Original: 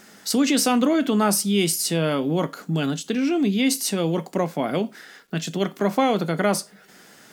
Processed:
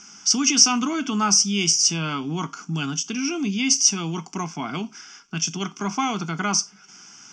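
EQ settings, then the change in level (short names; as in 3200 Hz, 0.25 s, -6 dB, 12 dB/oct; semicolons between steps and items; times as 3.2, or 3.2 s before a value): synth low-pass 5800 Hz, resonance Q 7.7; bell 1700 Hz +5.5 dB 1.3 oct; fixed phaser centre 2700 Hz, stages 8; -1.5 dB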